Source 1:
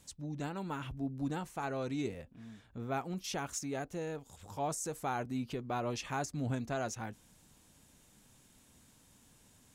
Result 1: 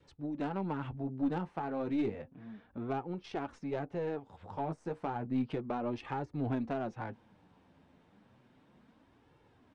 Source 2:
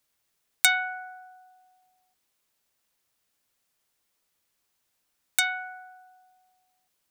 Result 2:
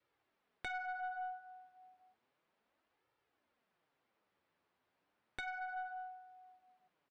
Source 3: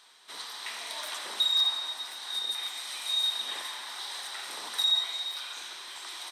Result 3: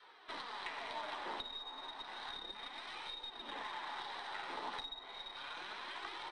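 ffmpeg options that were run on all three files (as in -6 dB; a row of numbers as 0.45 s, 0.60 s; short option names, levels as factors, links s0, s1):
-filter_complex "[0:a]highpass=f=190:p=1,adynamicequalizer=threshold=0.00224:dfrequency=860:dqfactor=5.1:tfrequency=860:tqfactor=5.1:attack=5:release=100:ratio=0.375:range=3:mode=boostabove:tftype=bell,flanger=delay=2.2:depth=9.5:regen=-21:speed=0.32:shape=sinusoidal,acrossover=split=380[s0][s1];[s1]acompressor=threshold=0.00562:ratio=10[s2];[s0][s2]amix=inputs=2:normalize=0,aeval=exprs='(tanh(22.4*val(0)+0.5)-tanh(0.5))/22.4':c=same,equalizer=f=7000:t=o:w=0.47:g=-9.5,asplit=2[s3][s4];[s4]aeval=exprs='0.015*(abs(mod(val(0)/0.015+3,4)-2)-1)':c=same,volume=0.376[s5];[s3][s5]amix=inputs=2:normalize=0,adynamicsmooth=sensitivity=7.5:basefreq=1900,aresample=22050,aresample=44100,volume=2.66"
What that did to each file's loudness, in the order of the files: +1.0 LU, -18.5 LU, -14.5 LU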